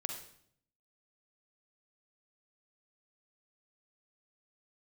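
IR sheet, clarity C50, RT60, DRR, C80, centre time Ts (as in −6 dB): 5.0 dB, 0.65 s, 3.5 dB, 8.5 dB, 27 ms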